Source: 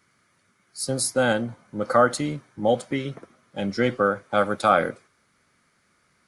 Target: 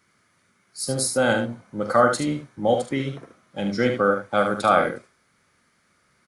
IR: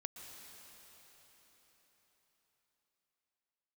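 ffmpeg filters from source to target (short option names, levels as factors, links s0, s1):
-af "aecho=1:1:44|74:0.316|0.447"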